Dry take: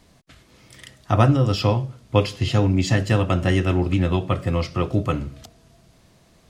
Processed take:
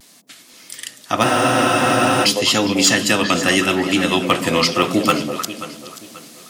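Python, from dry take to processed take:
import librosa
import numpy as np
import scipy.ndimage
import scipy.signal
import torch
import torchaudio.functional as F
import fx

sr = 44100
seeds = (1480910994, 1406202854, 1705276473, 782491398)

p1 = x + fx.echo_stepped(x, sr, ms=103, hz=200.0, octaves=1.4, feedback_pct=70, wet_db=-2, dry=0)
p2 = fx.rider(p1, sr, range_db=3, speed_s=0.5)
p3 = scipy.signal.sosfilt(scipy.signal.butter(2, 140.0, 'highpass', fs=sr, output='sos'), p2)
p4 = fx.tilt_eq(p3, sr, slope=4.5)
p5 = fx.vibrato(p4, sr, rate_hz=0.84, depth_cents=48.0)
p6 = fx.echo_feedback(p5, sr, ms=534, feedback_pct=35, wet_db=-15.0)
p7 = (np.mod(10.0 ** (9.5 / 20.0) * p6 + 1.0, 2.0) - 1.0) / 10.0 ** (9.5 / 20.0)
p8 = p6 + F.gain(torch.from_numpy(p7), -10.0).numpy()
p9 = fx.peak_eq(p8, sr, hz=250.0, db=8.5, octaves=0.98)
p10 = fx.spec_freeze(p9, sr, seeds[0], at_s=1.26, hold_s=0.98)
y = F.gain(torch.from_numpy(p10), 4.0).numpy()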